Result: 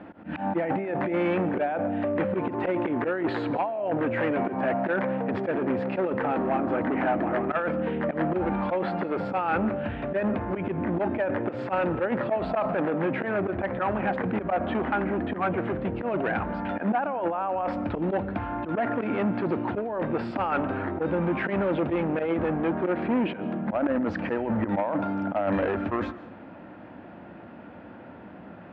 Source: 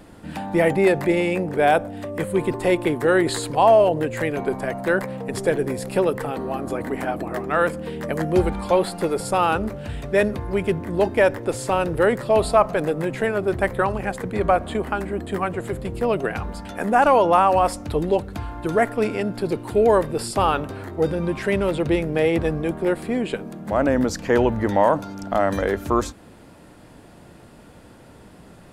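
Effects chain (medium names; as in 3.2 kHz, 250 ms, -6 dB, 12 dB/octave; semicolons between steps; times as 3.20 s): in parallel at +1.5 dB: level held to a coarse grid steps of 19 dB; on the sum: slow attack 106 ms; compressor with a negative ratio -20 dBFS, ratio -1; hard clipper -18.5 dBFS, distortion -11 dB; cabinet simulation 140–2300 Hz, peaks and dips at 140 Hz -10 dB, 430 Hz -8 dB, 1.1 kHz -4 dB, 2 kHz -4 dB; on a send at -17 dB: reverberation RT60 0.75 s, pre-delay 100 ms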